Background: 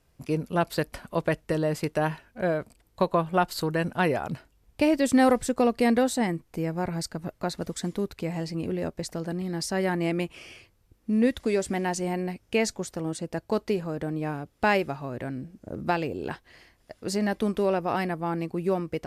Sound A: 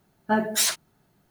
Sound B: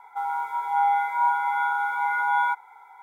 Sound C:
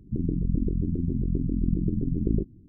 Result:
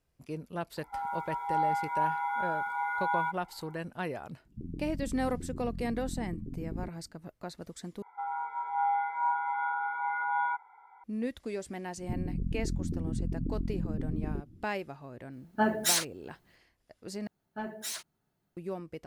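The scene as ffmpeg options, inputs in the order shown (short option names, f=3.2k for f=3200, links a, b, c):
-filter_complex "[2:a]asplit=2[a][b];[3:a]asplit=2[c][d];[1:a]asplit=2[e][f];[0:a]volume=-11.5dB[g];[a]equalizer=f=430:w=0.36:g=3.5[h];[b]lowpass=2k[i];[d]alimiter=limit=-21.5dB:level=0:latency=1:release=194[j];[f]asoftclip=type=tanh:threshold=-13.5dB[k];[g]asplit=3[l][m][n];[l]atrim=end=8.024[o];[i]atrim=end=3.02,asetpts=PTS-STARTPTS,volume=-7dB[p];[m]atrim=start=11.036:end=17.274[q];[k]atrim=end=1.3,asetpts=PTS-STARTPTS,volume=-14dB[r];[n]atrim=start=18.566[s];[h]atrim=end=3.02,asetpts=PTS-STARTPTS,volume=-10dB,afade=t=in:d=0.004:c=hsin,afade=t=out:st=3.016:d=0.004:c=hsin,adelay=770[t];[c]atrim=end=2.68,asetpts=PTS-STARTPTS,volume=-13.5dB,afade=t=in:d=0.004:c=hsin,afade=t=out:st=2.676:d=0.004:c=hsin,adelay=196245S[u];[j]atrim=end=2.68,asetpts=PTS-STARTPTS,volume=-2.5dB,afade=t=in:d=0.004:c=hsin,afade=t=out:st=2.676:d=0.004:c=hsin,adelay=11970[v];[e]atrim=end=1.3,asetpts=PTS-STARTPTS,volume=-4dB,afade=t=in:d=0.05,afade=t=out:st=1.25:d=0.05,adelay=15290[w];[o][p]acrossfade=d=0.004:c1=hsin:c2=hsin[x];[x][q]acrossfade=d=0.004:c1=hsin:c2=hsin[y];[y][r]acrossfade=d=0.004:c1=hsin:c2=hsin[z];[z][s]acrossfade=d=0.004:c1=hsin:c2=hsin[aa];[aa][t][u][v][w]amix=inputs=5:normalize=0"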